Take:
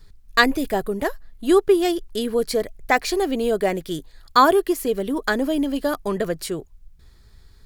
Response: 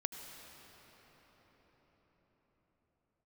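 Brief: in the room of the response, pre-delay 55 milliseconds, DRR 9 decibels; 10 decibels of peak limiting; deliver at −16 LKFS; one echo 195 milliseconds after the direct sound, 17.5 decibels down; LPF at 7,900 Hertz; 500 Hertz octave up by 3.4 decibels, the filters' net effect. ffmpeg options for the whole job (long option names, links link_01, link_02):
-filter_complex "[0:a]lowpass=7900,equalizer=frequency=500:width_type=o:gain=4.5,alimiter=limit=-11dB:level=0:latency=1,aecho=1:1:195:0.133,asplit=2[link_01][link_02];[1:a]atrim=start_sample=2205,adelay=55[link_03];[link_02][link_03]afir=irnorm=-1:irlink=0,volume=-9dB[link_04];[link_01][link_04]amix=inputs=2:normalize=0,volume=5.5dB"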